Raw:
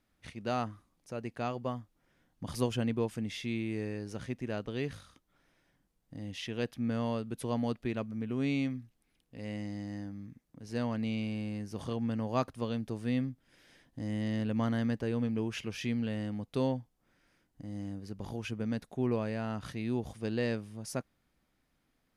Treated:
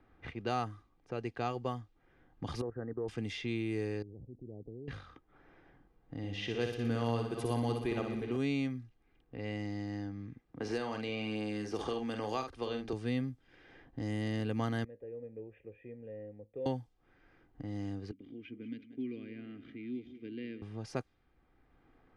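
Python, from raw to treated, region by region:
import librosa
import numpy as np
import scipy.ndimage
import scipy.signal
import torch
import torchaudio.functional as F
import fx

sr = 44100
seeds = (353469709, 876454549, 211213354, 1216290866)

y = fx.chain(x, sr, fx.level_steps(step_db=12),
    fx.cheby_ripple(hz=1900.0, ripple_db=6), at=(2.61, 3.08))
y = fx.chain(y, sr, fx.gaussian_blur(sigma=18.0),
    fx.level_steps(step_db=17), at=(4.02, 4.88))
y = fx.chain(y, sr, fx.reverse_delay_fb(ms=183, feedback_pct=48, wet_db=-11),
    fx.echo_feedback(ms=60, feedback_pct=50, wet_db=-6), at=(6.17, 8.37))
y = fx.chain(y, sr, fx.peak_eq(hz=120.0, db=-14.0, octaves=1.5),
    fx.doubler(ms=47.0, db=-6.5),
    fx.band_squash(depth_pct=100), at=(10.6, 12.93))
y = fx.chain(y, sr, fx.formant_cascade(vowel='e'),
    fx.peak_eq(hz=1700.0, db=-11.0, octaves=1.8),
    fx.comb_fb(f0_hz=53.0, decay_s=0.21, harmonics='all', damping=0.0, mix_pct=50), at=(14.84, 16.66))
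y = fx.chain(y, sr, fx.vowel_filter(vowel='i'),
    fx.echo_feedback(ms=183, feedback_pct=41, wet_db=-14.0), at=(18.11, 20.62))
y = fx.env_lowpass(y, sr, base_hz=1600.0, full_db=-29.5)
y = y + 0.45 * np.pad(y, (int(2.5 * sr / 1000.0), 0))[:len(y)]
y = fx.band_squash(y, sr, depth_pct=40)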